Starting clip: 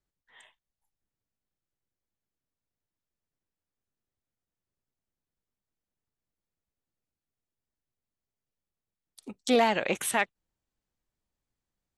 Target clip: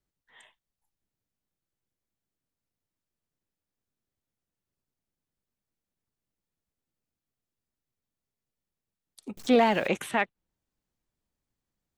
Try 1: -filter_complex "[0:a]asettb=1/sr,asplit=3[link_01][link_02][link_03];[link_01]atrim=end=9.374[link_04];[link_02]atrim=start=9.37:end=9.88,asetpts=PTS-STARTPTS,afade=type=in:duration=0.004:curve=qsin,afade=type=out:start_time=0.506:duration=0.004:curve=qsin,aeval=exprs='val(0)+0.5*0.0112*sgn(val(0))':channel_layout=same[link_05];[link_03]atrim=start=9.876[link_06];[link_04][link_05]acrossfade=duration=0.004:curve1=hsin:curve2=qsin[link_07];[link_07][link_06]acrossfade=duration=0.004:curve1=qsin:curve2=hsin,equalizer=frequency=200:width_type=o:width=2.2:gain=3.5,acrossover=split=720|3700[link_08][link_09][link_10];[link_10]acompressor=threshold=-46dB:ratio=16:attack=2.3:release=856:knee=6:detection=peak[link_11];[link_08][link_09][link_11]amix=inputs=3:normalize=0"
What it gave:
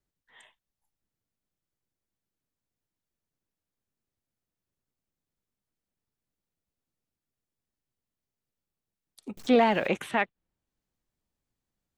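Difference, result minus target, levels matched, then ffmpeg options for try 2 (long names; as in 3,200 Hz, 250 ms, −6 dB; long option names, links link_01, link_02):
downward compressor: peak gain reduction +7 dB
-filter_complex "[0:a]asettb=1/sr,asplit=3[link_01][link_02][link_03];[link_01]atrim=end=9.374[link_04];[link_02]atrim=start=9.37:end=9.88,asetpts=PTS-STARTPTS,afade=type=in:duration=0.004:curve=qsin,afade=type=out:start_time=0.506:duration=0.004:curve=qsin,aeval=exprs='val(0)+0.5*0.0112*sgn(val(0))':channel_layout=same[link_05];[link_03]atrim=start=9.876[link_06];[link_04][link_05]acrossfade=duration=0.004:curve1=hsin:curve2=qsin[link_07];[link_07][link_06]acrossfade=duration=0.004:curve1=qsin:curve2=hsin,equalizer=frequency=200:width_type=o:width=2.2:gain=3.5,acrossover=split=720|3700[link_08][link_09][link_10];[link_10]acompressor=threshold=-38.5dB:ratio=16:attack=2.3:release=856:knee=6:detection=peak[link_11];[link_08][link_09][link_11]amix=inputs=3:normalize=0"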